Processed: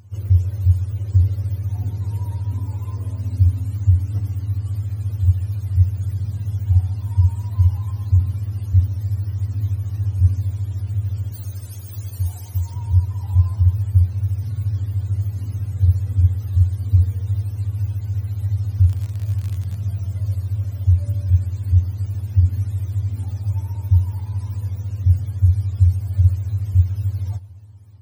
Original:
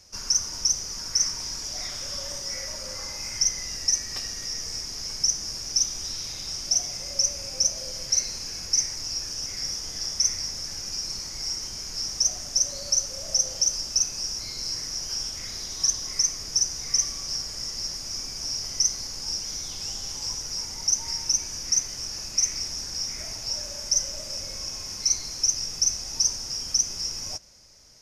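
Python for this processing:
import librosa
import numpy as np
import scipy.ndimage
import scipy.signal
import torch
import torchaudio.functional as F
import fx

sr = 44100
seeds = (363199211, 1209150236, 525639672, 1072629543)

y = fx.octave_mirror(x, sr, pivot_hz=730.0)
y = fx.bass_treble(y, sr, bass_db=-8, treble_db=12, at=(11.32, 12.74))
y = fx.dmg_crackle(y, sr, seeds[0], per_s=64.0, level_db=-27.0, at=(18.8, 19.74), fade=0.02)
y = fx.echo_warbled(y, sr, ms=118, feedback_pct=62, rate_hz=2.8, cents=140, wet_db=-23)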